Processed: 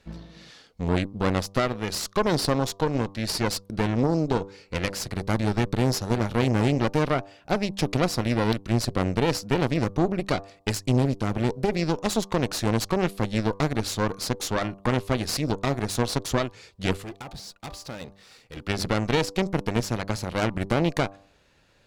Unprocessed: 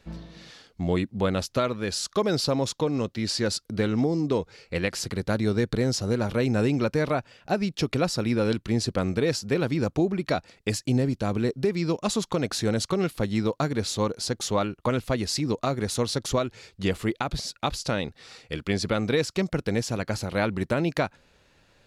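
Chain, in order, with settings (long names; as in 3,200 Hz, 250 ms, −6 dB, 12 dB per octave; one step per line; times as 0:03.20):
0:17.02–0:18.57: gain on one half-wave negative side −12 dB
hum removal 98.19 Hz, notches 12
harmonic generator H 4 −10 dB, 8 −32 dB, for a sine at −10.5 dBFS
level −1 dB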